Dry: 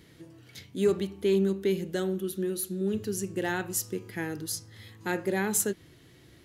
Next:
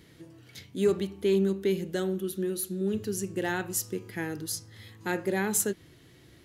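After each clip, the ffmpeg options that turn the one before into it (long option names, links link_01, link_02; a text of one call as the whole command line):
ffmpeg -i in.wav -af anull out.wav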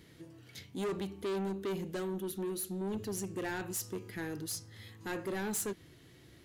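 ffmpeg -i in.wav -af "asoftclip=type=tanh:threshold=-29.5dB,volume=-2.5dB" out.wav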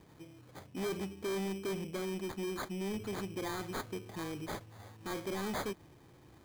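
ffmpeg -i in.wav -af "acrusher=samples=16:mix=1:aa=0.000001,bandreject=frequency=1400:width=18,volume=-1dB" out.wav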